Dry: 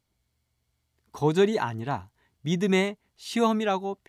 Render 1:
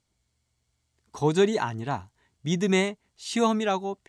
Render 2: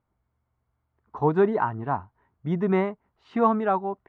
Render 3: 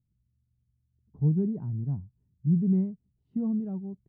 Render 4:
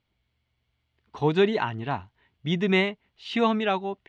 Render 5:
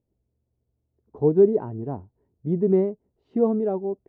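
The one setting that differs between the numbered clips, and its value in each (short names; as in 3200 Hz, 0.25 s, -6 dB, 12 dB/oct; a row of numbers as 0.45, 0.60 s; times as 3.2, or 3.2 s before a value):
synth low-pass, frequency: 7900, 1200, 160, 3000, 450 Hz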